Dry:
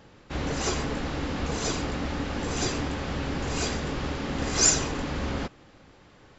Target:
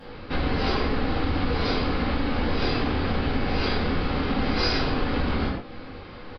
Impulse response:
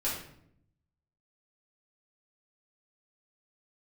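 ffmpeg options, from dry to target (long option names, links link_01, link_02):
-filter_complex "[0:a]aresample=11025,aresample=44100[link_01];[1:a]atrim=start_sample=2205,atrim=end_sample=6174,asetrate=39249,aresample=44100[link_02];[link_01][link_02]afir=irnorm=-1:irlink=0,acompressor=threshold=-31dB:ratio=2.5,volume=6dB"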